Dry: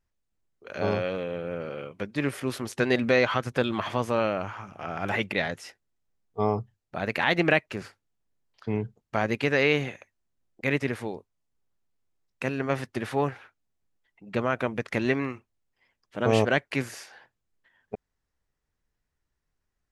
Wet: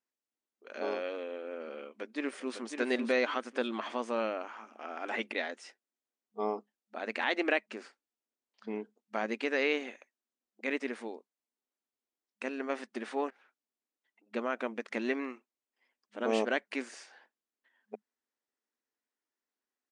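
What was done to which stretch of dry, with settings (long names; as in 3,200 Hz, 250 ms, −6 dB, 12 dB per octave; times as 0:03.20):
0:01.85–0:02.57: delay throw 550 ms, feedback 25%, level −6.5 dB
0:13.30–0:14.34: downward compressor 16 to 1, threshold −53 dBFS
whole clip: brick-wall band-pass 210–9,800 Hz; level −7 dB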